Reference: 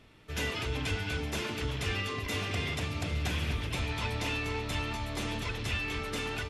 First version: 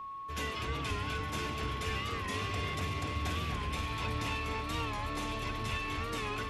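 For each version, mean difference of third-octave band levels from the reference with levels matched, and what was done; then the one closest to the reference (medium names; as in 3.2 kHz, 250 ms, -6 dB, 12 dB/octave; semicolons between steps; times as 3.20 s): 3.0 dB: flange 0.71 Hz, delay 0.7 ms, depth 5.4 ms, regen -76%; on a send: echo whose repeats swap between lows and highs 266 ms, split 2.2 kHz, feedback 67%, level -3.5 dB; on the sum: whistle 1.1 kHz -40 dBFS; warped record 45 rpm, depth 100 cents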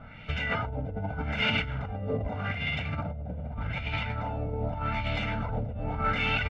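11.0 dB: peaking EQ 200 Hz +5.5 dB 1 oct; comb 1.4 ms, depth 97%; compressor with a negative ratio -34 dBFS, ratio -1; LFO low-pass sine 0.83 Hz 530–2700 Hz; trim +2 dB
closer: first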